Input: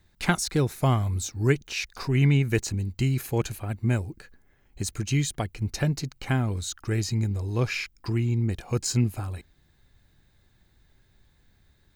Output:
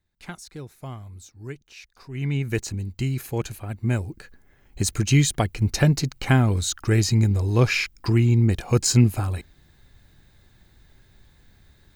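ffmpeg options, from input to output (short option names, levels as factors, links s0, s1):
-af "volume=2.24,afade=t=in:st=2.08:d=0.43:silence=0.223872,afade=t=in:st=3.7:d=1.2:silence=0.398107"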